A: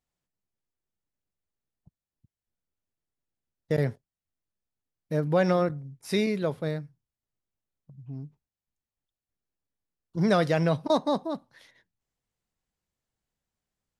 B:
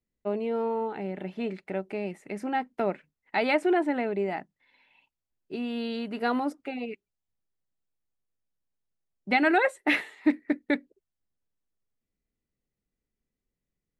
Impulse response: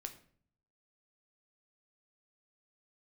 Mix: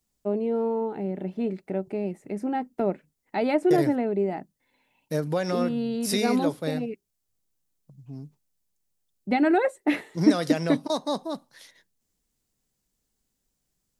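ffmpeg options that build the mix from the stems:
-filter_complex "[0:a]highpass=140,alimiter=limit=0.119:level=0:latency=1:release=379,volume=1.26[s0];[1:a]tiltshelf=f=970:g=9,volume=0.75[s1];[s0][s1]amix=inputs=2:normalize=0,bass=f=250:g=-1,treble=f=4000:g=11"

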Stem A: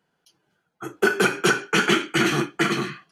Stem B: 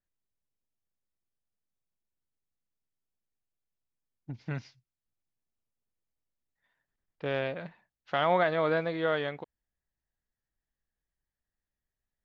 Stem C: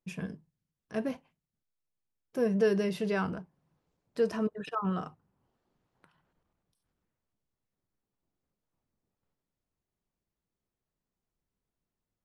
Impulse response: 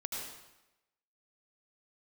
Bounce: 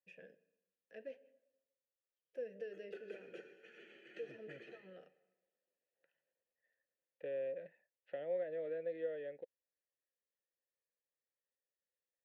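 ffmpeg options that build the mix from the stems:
-filter_complex "[0:a]flanger=delay=0.9:depth=8.2:regen=62:speed=0.33:shape=sinusoidal,adelay=1900,volume=0.531,asplit=2[s0][s1];[s1]volume=0.158[s2];[1:a]lowpass=f=2000:p=1,volume=1.41[s3];[2:a]volume=0.891,asplit=3[s4][s5][s6];[s5]volume=0.0708[s7];[s6]apad=whole_len=220996[s8];[s0][s8]sidechaingate=range=0.0224:threshold=0.00126:ratio=16:detection=peak[s9];[s9][s4]amix=inputs=2:normalize=0,lowshelf=f=380:g=-9,acompressor=threshold=0.0316:ratio=6,volume=1[s10];[3:a]atrim=start_sample=2205[s11];[s2][s7]amix=inputs=2:normalize=0[s12];[s12][s11]afir=irnorm=-1:irlink=0[s13];[s3][s10][s13]amix=inputs=3:normalize=0,acrossover=split=510|1500[s14][s15][s16];[s14]acompressor=threshold=0.0282:ratio=4[s17];[s15]acompressor=threshold=0.00251:ratio=4[s18];[s16]acompressor=threshold=0.00398:ratio=4[s19];[s17][s18][s19]amix=inputs=3:normalize=0,asplit=3[s20][s21][s22];[s20]bandpass=f=530:t=q:w=8,volume=1[s23];[s21]bandpass=f=1840:t=q:w=8,volume=0.501[s24];[s22]bandpass=f=2480:t=q:w=8,volume=0.355[s25];[s23][s24][s25]amix=inputs=3:normalize=0"

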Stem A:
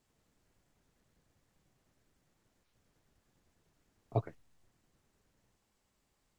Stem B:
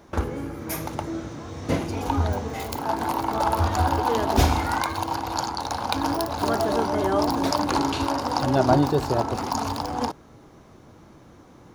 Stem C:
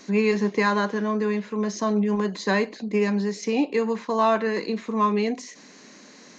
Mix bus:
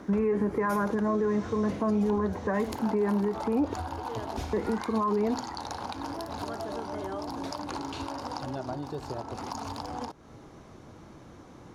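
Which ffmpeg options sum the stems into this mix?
-filter_complex "[0:a]aemphasis=mode=production:type=50kf,volume=0.355[s0];[1:a]lowpass=11000,acompressor=threshold=0.02:ratio=5,volume=1[s1];[2:a]lowpass=f=1500:w=0.5412,lowpass=f=1500:w=1.3066,aphaser=in_gain=1:out_gain=1:delay=3.4:decay=0.31:speed=1.1:type=triangular,volume=1.26,asplit=3[s2][s3][s4];[s2]atrim=end=3.74,asetpts=PTS-STARTPTS,afade=t=out:st=3.736:d=0.004:c=hsin[s5];[s3]atrim=start=3.74:end=4.53,asetpts=PTS-STARTPTS,volume=0[s6];[s4]atrim=start=4.53,asetpts=PTS-STARTPTS,afade=t=in:d=0.004:c=hsin[s7];[s5][s6][s7]concat=n=3:v=0:a=1[s8];[s0][s1][s8]amix=inputs=3:normalize=0,alimiter=limit=0.106:level=0:latency=1:release=87"

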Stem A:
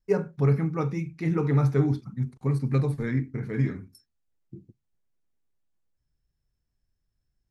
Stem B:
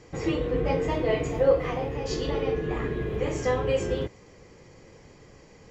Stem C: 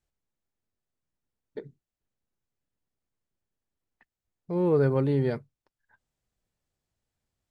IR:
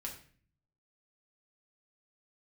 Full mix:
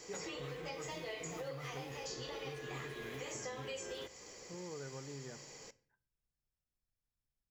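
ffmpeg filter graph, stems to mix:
-filter_complex "[0:a]volume=0.178[s0];[1:a]bass=f=250:g=-14,treble=f=4000:g=14,acompressor=threshold=0.0141:ratio=2,volume=0.708,asplit=2[s1][s2];[s2]volume=0.316[s3];[2:a]volume=0.119,asplit=2[s4][s5];[s5]volume=0.398[s6];[3:a]atrim=start_sample=2205[s7];[s3][s6]amix=inputs=2:normalize=0[s8];[s8][s7]afir=irnorm=-1:irlink=0[s9];[s0][s1][s4][s9]amix=inputs=4:normalize=0,acrossover=split=740|2100[s10][s11][s12];[s10]acompressor=threshold=0.00447:ratio=4[s13];[s11]acompressor=threshold=0.00316:ratio=4[s14];[s12]acompressor=threshold=0.00447:ratio=4[s15];[s13][s14][s15]amix=inputs=3:normalize=0"

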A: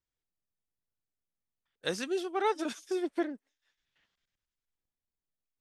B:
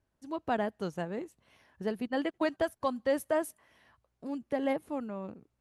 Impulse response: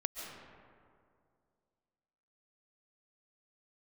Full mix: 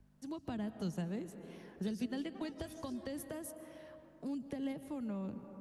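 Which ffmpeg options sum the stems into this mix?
-filter_complex "[0:a]acompressor=threshold=0.0141:ratio=6,volume=0.335[s0];[1:a]aeval=exprs='val(0)+0.000708*(sin(2*PI*50*n/s)+sin(2*PI*2*50*n/s)/2+sin(2*PI*3*50*n/s)/3+sin(2*PI*4*50*n/s)/4+sin(2*PI*5*50*n/s)/5)':c=same,acrossover=split=210[s1][s2];[s2]acompressor=threshold=0.0158:ratio=5[s3];[s1][s3]amix=inputs=2:normalize=0,volume=1.12,asplit=2[s4][s5];[s5]volume=0.398[s6];[2:a]atrim=start_sample=2205[s7];[s6][s7]afir=irnorm=-1:irlink=0[s8];[s0][s4][s8]amix=inputs=3:normalize=0,acrossover=split=260|3000[s9][s10][s11];[s10]acompressor=threshold=0.00251:ratio=2.5[s12];[s9][s12][s11]amix=inputs=3:normalize=0,bandreject=f=50:t=h:w=6,bandreject=f=100:t=h:w=6"

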